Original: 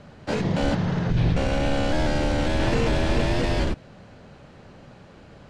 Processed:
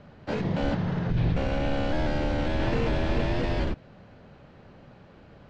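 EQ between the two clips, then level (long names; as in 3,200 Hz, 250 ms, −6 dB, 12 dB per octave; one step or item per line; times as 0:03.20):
high-frequency loss of the air 130 metres
−3.5 dB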